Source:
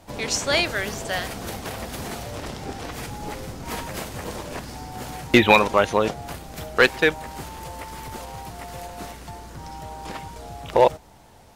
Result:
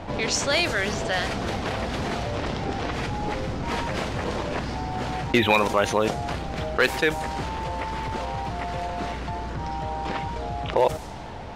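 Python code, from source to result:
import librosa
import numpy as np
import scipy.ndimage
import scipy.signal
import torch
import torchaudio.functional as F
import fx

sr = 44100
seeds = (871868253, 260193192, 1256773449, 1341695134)

y = fx.env_lowpass(x, sr, base_hz=2900.0, full_db=-15.5)
y = fx.env_flatten(y, sr, amount_pct=50)
y = F.gain(torch.from_numpy(y), -6.0).numpy()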